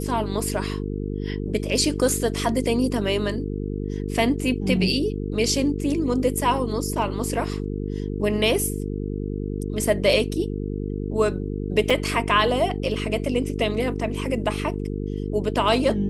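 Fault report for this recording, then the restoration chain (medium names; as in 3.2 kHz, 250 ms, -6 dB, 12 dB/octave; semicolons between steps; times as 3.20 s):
buzz 50 Hz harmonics 9 -28 dBFS
11.90 s: dropout 4.9 ms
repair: de-hum 50 Hz, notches 9; interpolate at 11.90 s, 4.9 ms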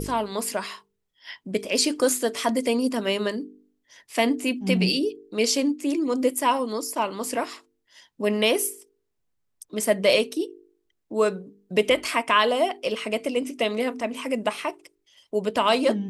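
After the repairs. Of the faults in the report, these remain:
nothing left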